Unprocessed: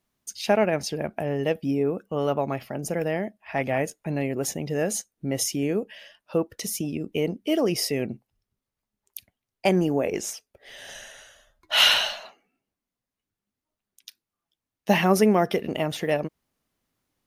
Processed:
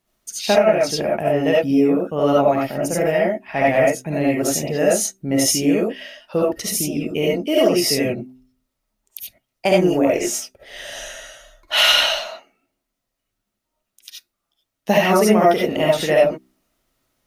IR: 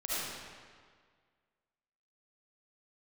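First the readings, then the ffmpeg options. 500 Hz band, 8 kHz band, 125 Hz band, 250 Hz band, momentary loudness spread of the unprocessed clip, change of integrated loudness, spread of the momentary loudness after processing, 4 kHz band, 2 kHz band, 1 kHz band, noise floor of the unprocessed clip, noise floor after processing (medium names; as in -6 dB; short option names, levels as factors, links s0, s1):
+8.5 dB, +8.5 dB, +3.5 dB, +7.0 dB, 20 LU, +7.0 dB, 17 LU, +5.0 dB, +6.0 dB, +7.5 dB, under -85 dBFS, -79 dBFS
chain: -filter_complex "[0:a]bandreject=f=64.02:t=h:w=4,bandreject=f=128.04:t=h:w=4,bandreject=f=192.06:t=h:w=4,bandreject=f=256.08:t=h:w=4,bandreject=f=320.1:t=h:w=4,bandreject=f=384.12:t=h:w=4[s0];[1:a]atrim=start_sample=2205,atrim=end_sample=4410[s1];[s0][s1]afir=irnorm=-1:irlink=0,alimiter=limit=0.251:level=0:latency=1:release=289,volume=2.37"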